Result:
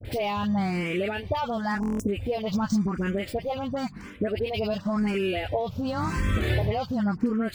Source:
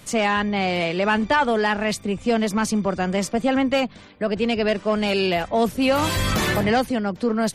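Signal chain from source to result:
running median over 5 samples
0:05.06–0:07.10: high-shelf EQ 5,700 Hz −5 dB
all-pass dispersion highs, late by 53 ms, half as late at 1,100 Hz
0:01.79–0:02.08: time-frequency box erased 1,100–5,100 Hz
downward compressor 12 to 1, threshold −29 dBFS, peak gain reduction 15.5 dB
parametric band 88 Hz +13 dB 1.7 octaves
downward expander −42 dBFS
buffer that repeats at 0:01.81, samples 1,024, times 7
frequency shifter mixed with the dry sound +0.93 Hz
level +6 dB

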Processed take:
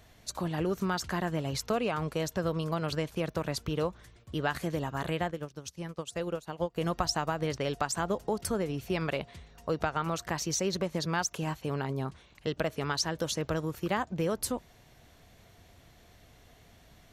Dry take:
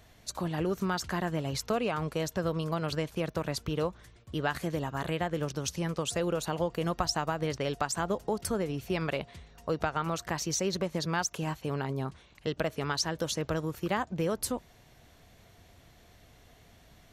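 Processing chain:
0:05.31–0:06.76: expander for the loud parts 2.5 to 1, over −38 dBFS

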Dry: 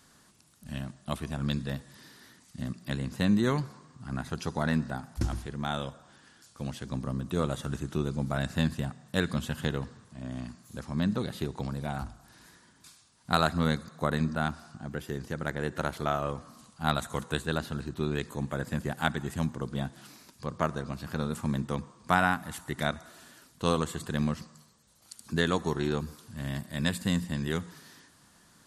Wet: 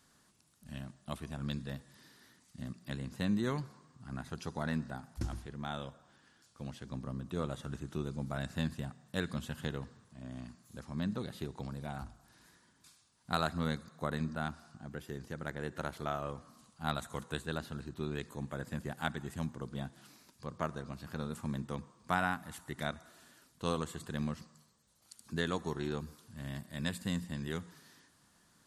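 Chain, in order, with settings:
0:05.40–0:07.87: high-shelf EQ 7,800 Hz −6 dB
level −7.5 dB

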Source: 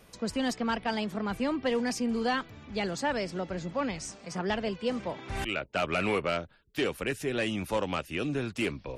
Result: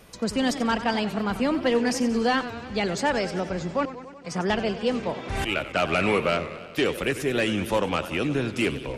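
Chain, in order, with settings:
0:03.85–0:04.25: gate with flip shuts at −37 dBFS, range −37 dB
feedback echo with a swinging delay time 94 ms, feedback 69%, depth 157 cents, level −13 dB
level +5.5 dB

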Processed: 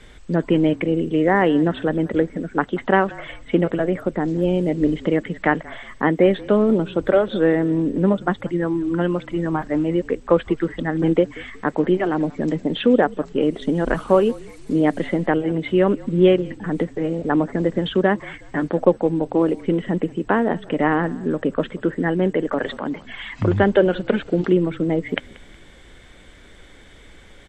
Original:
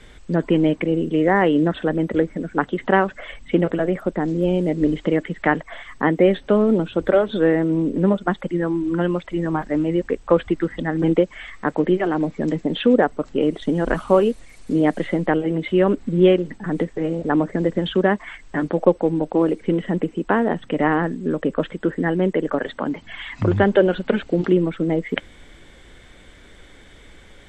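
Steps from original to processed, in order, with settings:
echo with shifted repeats 183 ms, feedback 37%, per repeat −38 Hz, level −22 dB
0:22.52–0:22.94: transient designer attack −6 dB, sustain +4 dB

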